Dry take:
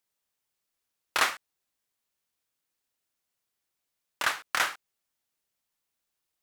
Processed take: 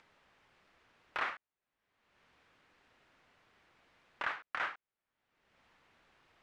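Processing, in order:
brickwall limiter −16.5 dBFS, peak gain reduction 6.5 dB
Chebyshev low-pass filter 2,000 Hz, order 2
upward compression, threshold −41 dBFS
level −5 dB

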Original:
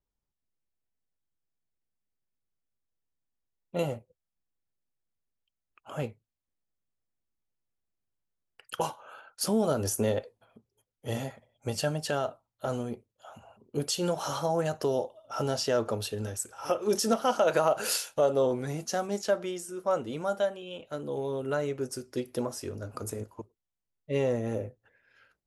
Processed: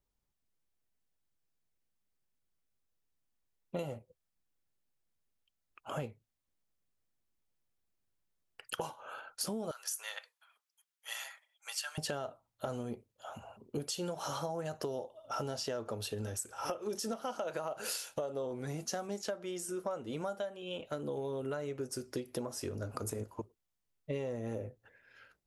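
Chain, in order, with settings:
0:09.71–0:11.98: high-pass filter 1,200 Hz 24 dB per octave
downward compressor 10 to 1, threshold −37 dBFS, peak gain reduction 17.5 dB
level +2.5 dB

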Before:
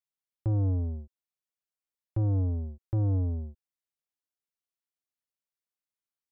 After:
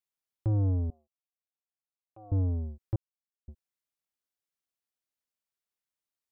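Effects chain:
0:00.90–0:02.32: formant filter a
0:02.96–0:03.48: silence

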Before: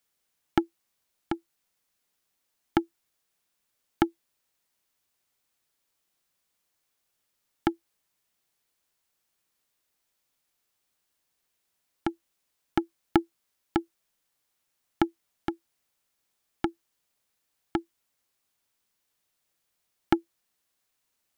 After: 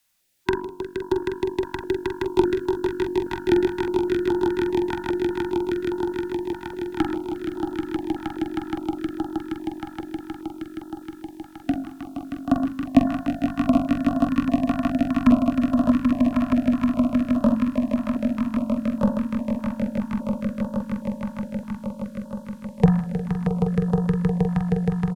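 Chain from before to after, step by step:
gliding playback speed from 119% → 51%
hum removal 47.33 Hz, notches 38
frequency shifter −17 Hz
harmonic and percussive parts rebalanced harmonic +8 dB
double-tracking delay 45 ms −7 dB
on a send: echo that builds up and dies away 157 ms, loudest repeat 8, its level −6 dB
on the sum: notch on a step sequencer 4.9 Hz 430–2,200 Hz
level +4 dB

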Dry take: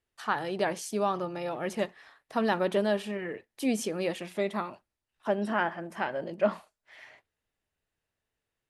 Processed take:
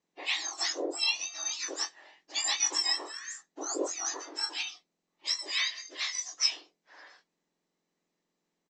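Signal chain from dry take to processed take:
frequency axis turned over on the octave scale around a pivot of 1,800 Hz
high-pass filter 600 Hz 6 dB per octave
parametric band 1,400 Hz −8 dB 0.72 octaves
ambience of single reflections 12 ms −16.5 dB, 23 ms −7.5 dB
level +5 dB
SBC 192 kbit/s 16,000 Hz

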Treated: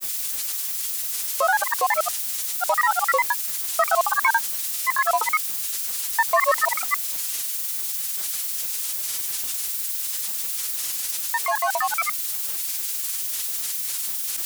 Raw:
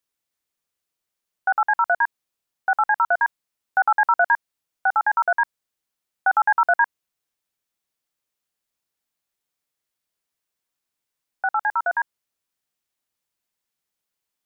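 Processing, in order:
spike at every zero crossing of −19.5 dBFS
granular cloud 100 ms, pitch spread up and down by 7 semitones

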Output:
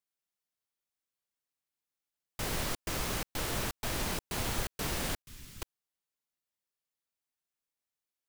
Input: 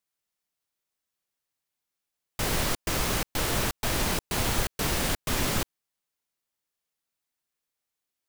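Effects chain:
0:05.22–0:05.62: guitar amp tone stack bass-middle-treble 6-0-2
level −7 dB

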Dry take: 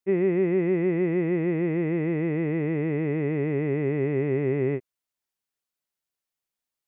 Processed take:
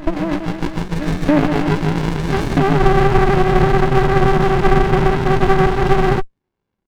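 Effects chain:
comb filter 4.9 ms, depth 64%
compressor whose output falls as the input rises −25 dBFS, ratio −1
flanger 0.99 Hz, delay 5.2 ms, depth 5.4 ms, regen −25%
single-sideband voice off tune −55 Hz 260–2,600 Hz
auto-filter high-pass saw up 0.78 Hz 360–1,900 Hz
backwards echo 292 ms −14 dB
boost into a limiter +22.5 dB
frozen spectrum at 0:02.80, 3.38 s
windowed peak hold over 65 samples

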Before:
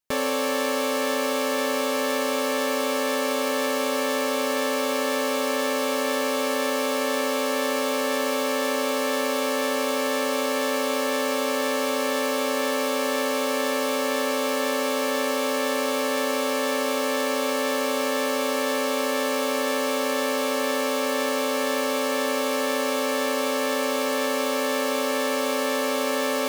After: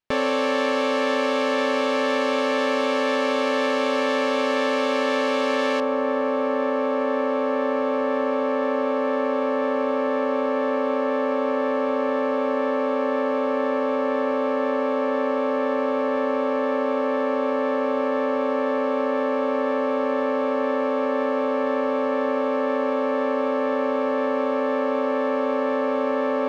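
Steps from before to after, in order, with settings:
low-pass filter 3,600 Hz 12 dB per octave, from 0:05.80 1,300 Hz
level +3 dB

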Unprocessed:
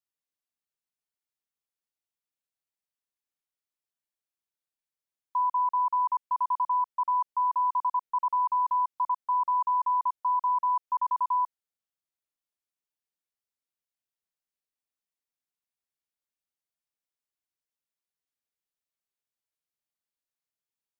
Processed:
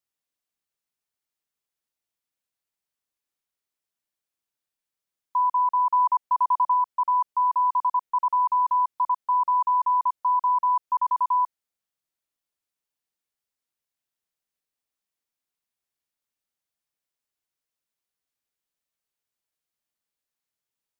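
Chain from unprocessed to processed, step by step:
0:05.91–0:06.74: dynamic equaliser 760 Hz, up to +4 dB, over −44 dBFS, Q 2.2
level +4 dB

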